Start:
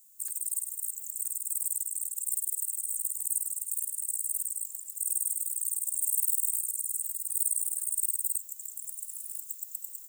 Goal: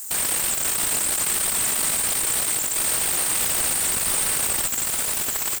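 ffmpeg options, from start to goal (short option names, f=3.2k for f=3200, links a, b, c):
-filter_complex "[0:a]atempo=1.8,asuperstop=centerf=2700:order=20:qfactor=1.3,asplit=2[a][b];[b]highpass=f=720:p=1,volume=36dB,asoftclip=type=tanh:threshold=-13.5dB[c];[a][c]amix=inputs=2:normalize=0,lowpass=f=4.8k:p=1,volume=-6dB,volume=3.5dB"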